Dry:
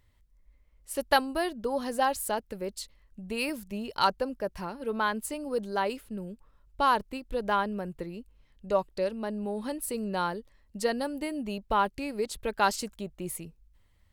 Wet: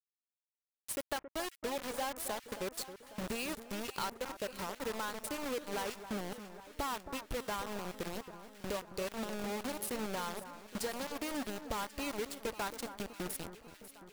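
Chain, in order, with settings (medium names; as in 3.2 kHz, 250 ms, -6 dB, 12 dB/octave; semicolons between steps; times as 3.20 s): single-diode clipper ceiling -13.5 dBFS; 7.70–9.29 s: dynamic bell 700 Hz, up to -6 dB, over -40 dBFS, Q 2; compression 4:1, threshold -42 dBFS, peak gain reduction 19.5 dB; bit crusher 7-bit; echo whose repeats swap between lows and highs 272 ms, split 1.7 kHz, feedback 75%, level -11 dB; trim +3 dB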